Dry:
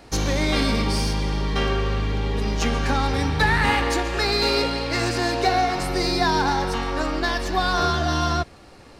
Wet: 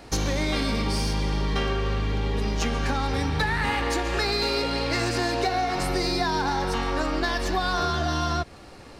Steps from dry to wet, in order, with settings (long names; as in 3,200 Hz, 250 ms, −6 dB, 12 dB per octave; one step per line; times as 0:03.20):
downward compressor, threshold −23 dBFS, peak gain reduction 8.5 dB
level +1.5 dB